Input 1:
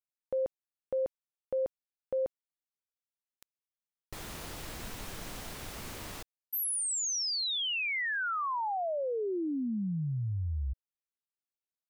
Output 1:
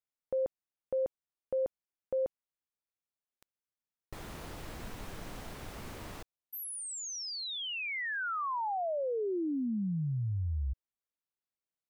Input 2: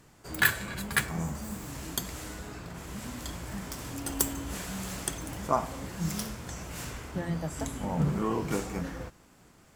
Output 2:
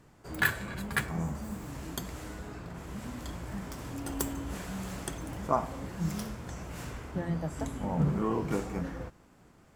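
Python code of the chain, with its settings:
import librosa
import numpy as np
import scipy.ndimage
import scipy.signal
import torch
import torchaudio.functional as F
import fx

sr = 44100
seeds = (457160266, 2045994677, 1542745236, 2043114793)

y = fx.high_shelf(x, sr, hz=2400.0, db=-8.5)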